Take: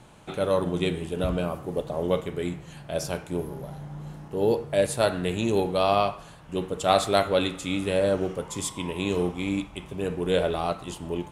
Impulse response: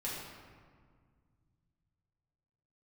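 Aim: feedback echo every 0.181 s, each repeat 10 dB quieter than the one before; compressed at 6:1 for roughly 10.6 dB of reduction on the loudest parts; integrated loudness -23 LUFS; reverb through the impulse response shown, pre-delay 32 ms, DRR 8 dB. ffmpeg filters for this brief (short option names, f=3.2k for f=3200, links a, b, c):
-filter_complex "[0:a]acompressor=threshold=-28dB:ratio=6,aecho=1:1:181|362|543|724:0.316|0.101|0.0324|0.0104,asplit=2[a][b];[1:a]atrim=start_sample=2205,adelay=32[c];[b][c]afir=irnorm=-1:irlink=0,volume=-10.5dB[d];[a][d]amix=inputs=2:normalize=0,volume=9.5dB"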